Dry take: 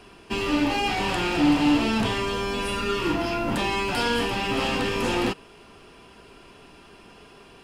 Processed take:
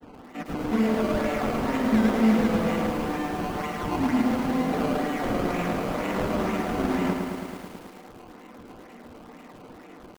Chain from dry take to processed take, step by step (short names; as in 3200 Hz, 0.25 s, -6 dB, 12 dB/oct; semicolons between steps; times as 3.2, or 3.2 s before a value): steep high-pass 240 Hz 96 dB/oct; reverb, pre-delay 3 ms, DRR -3.5 dB; wide varispeed 0.75×; in parallel at -1 dB: upward compressor, threshold -26 dBFS; on the sum: grains 0.1 s, grains 20/s, pitch spread up and down by 0 st; decimation with a swept rate 17×, swing 100% 2.1 Hz; LPF 1300 Hz 6 dB/oct; lo-fi delay 0.109 s, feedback 80%, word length 6-bit, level -6 dB; gain -9 dB